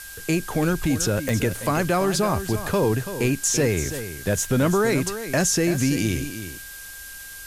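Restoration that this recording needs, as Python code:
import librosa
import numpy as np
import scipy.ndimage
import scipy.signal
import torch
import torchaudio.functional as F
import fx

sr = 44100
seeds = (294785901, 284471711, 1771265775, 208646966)

y = fx.fix_declick_ar(x, sr, threshold=10.0)
y = fx.notch(y, sr, hz=1600.0, q=30.0)
y = fx.noise_reduce(y, sr, print_start_s=6.64, print_end_s=7.14, reduce_db=30.0)
y = fx.fix_echo_inverse(y, sr, delay_ms=334, level_db=-11.0)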